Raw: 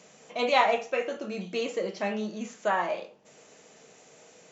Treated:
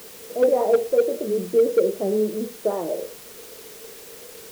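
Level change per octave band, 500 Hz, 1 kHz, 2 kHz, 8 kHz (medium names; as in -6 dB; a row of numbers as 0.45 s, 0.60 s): +10.5 dB, -4.5 dB, -10.0 dB, no reading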